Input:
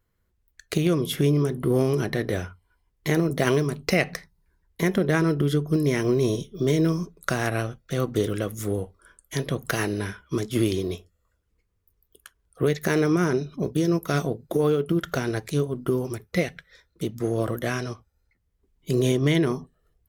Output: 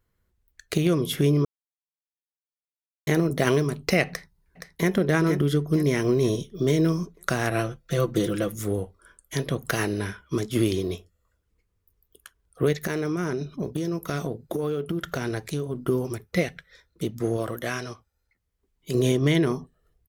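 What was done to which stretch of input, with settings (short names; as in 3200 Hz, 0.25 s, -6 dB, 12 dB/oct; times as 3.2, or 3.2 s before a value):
1.45–3.07 mute
4.08–4.93 echo throw 0.47 s, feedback 40%, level -7.5 dB
7.5–8.56 comb 5.9 ms
12.72–15.75 compressor, threshold -23 dBFS
17.37–18.95 low shelf 450 Hz -6.5 dB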